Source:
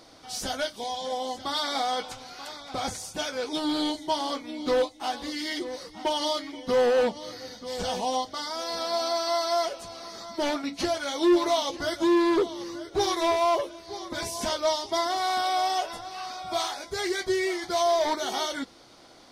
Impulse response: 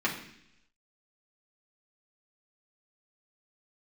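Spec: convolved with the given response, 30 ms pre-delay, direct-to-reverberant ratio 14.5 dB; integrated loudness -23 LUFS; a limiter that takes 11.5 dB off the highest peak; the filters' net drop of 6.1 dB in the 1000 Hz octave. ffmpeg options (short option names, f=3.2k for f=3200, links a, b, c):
-filter_complex "[0:a]equalizer=f=1k:t=o:g=-9,alimiter=level_in=2dB:limit=-24dB:level=0:latency=1,volume=-2dB,asplit=2[a][b];[1:a]atrim=start_sample=2205,adelay=30[c];[b][c]afir=irnorm=-1:irlink=0,volume=-24.5dB[d];[a][d]amix=inputs=2:normalize=0,volume=11.5dB"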